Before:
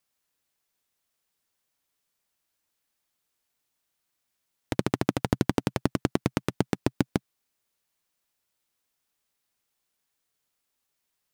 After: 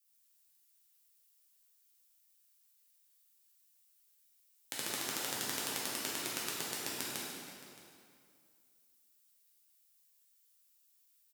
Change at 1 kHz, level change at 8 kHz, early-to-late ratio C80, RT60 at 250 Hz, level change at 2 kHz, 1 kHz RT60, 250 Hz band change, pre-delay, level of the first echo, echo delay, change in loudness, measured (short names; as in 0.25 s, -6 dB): -9.5 dB, +7.0 dB, -0.5 dB, 2.4 s, -3.5 dB, 2.3 s, -20.5 dB, 6 ms, -17.5 dB, 0.62 s, -8.0 dB